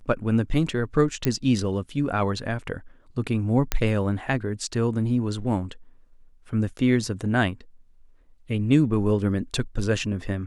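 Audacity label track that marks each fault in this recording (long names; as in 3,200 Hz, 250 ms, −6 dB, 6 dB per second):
1.250000	1.250000	click −9 dBFS
3.720000	3.720000	click −6 dBFS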